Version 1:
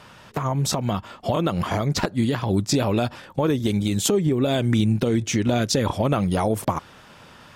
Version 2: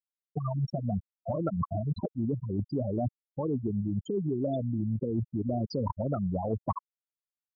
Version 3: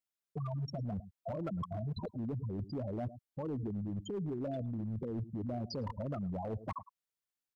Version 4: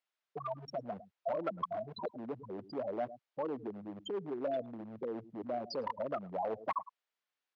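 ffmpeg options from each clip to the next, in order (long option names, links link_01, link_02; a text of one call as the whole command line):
ffmpeg -i in.wav -af "afftfilt=real='re*gte(hypot(re,im),0.316)':imag='im*gte(hypot(re,im),0.316)':win_size=1024:overlap=0.75,areverse,acompressor=threshold=-28dB:ratio=20,areverse,volume=1.5dB" out.wav
ffmpeg -i in.wav -filter_complex "[0:a]asplit=2[link_01][link_02];[link_02]adelay=105,volume=-24dB,highshelf=frequency=4000:gain=-2.36[link_03];[link_01][link_03]amix=inputs=2:normalize=0,asoftclip=type=hard:threshold=-25.5dB,alimiter=level_in=10.5dB:limit=-24dB:level=0:latency=1:release=21,volume=-10.5dB,volume=1.5dB" out.wav
ffmpeg -i in.wav -af "highpass=500,lowpass=3500,volume=7.5dB" out.wav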